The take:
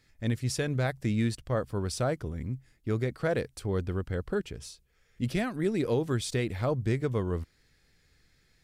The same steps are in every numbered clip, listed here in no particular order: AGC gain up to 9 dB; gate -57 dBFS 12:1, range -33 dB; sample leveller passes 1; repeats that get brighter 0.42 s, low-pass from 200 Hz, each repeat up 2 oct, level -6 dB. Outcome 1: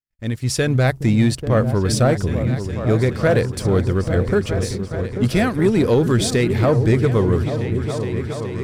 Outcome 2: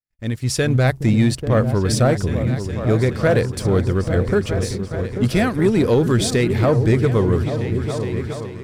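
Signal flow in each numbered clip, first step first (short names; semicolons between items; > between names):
gate > AGC > repeats that get brighter > sample leveller; repeats that get brighter > AGC > gate > sample leveller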